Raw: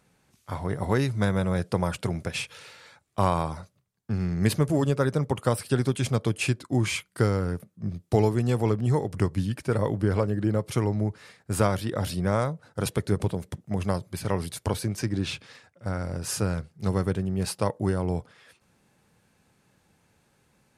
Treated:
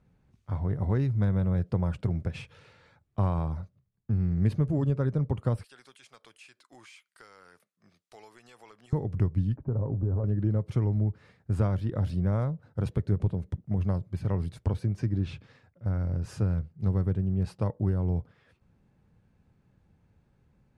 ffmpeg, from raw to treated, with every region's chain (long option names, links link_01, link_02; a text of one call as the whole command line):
ffmpeg -i in.wav -filter_complex "[0:a]asettb=1/sr,asplit=3[link_01][link_02][link_03];[link_01]atrim=end=5.644[link_04];[link_02]atrim=start=5.64:end=8.93,asetpts=PTS-STARTPTS,afade=type=in:duration=0.004:curve=qsin,afade=type=out:start_time=3.286:duration=0.004:curve=qsin,highpass=1200,highshelf=frequency=3300:gain=10.5,acompressor=threshold=-42dB:ratio=2.5:attack=3.2:release=140:knee=1:detection=peak[link_05];[link_03]atrim=start=8.926[link_06];[link_04][link_05]acrossfade=duration=0.004:curve1=hsin:curve2=qsin[link_07];[link_07][link_06]acrossfade=duration=0.004:curve1=qsin:curve2=hsin,asettb=1/sr,asplit=3[link_08][link_09][link_10];[link_08]atrim=end=9.564[link_11];[link_09]atrim=start=9.56:end=10.24,asetpts=PTS-STARTPTS,afade=type=in:duration=0.004:curve=qsin,afade=type=out:start_time=0.676:duration=0.004:curve=qsin,lowpass=frequency=1100:width=0.5412,lowpass=frequency=1100:width=1.3066,aecho=1:1:7.5:0.34,atrim=end_sample=29988,acompressor=threshold=-27dB:ratio=2:attack=3.2:release=140:knee=1:detection=peak[link_12];[link_10]atrim=start=10.236[link_13];[link_11][link_12]acrossfade=duration=0.004:curve1=hsin:curve2=qsin[link_14];[link_14][link_13]acrossfade=duration=0.004:curve1=qsin:curve2=hsin,aemphasis=mode=reproduction:type=riaa,acompressor=threshold=-19dB:ratio=1.5,volume=-8dB" out.wav